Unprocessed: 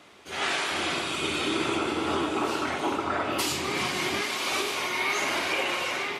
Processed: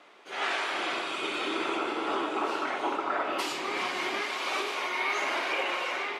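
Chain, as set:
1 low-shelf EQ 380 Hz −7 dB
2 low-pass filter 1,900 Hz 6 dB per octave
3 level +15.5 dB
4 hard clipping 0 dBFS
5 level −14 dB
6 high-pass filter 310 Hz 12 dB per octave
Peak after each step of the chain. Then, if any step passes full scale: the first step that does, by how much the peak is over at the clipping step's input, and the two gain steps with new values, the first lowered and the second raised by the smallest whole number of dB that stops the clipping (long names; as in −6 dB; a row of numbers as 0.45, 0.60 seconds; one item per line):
−15.5, −17.5, −2.0, −2.0, −16.0, −17.0 dBFS
no step passes full scale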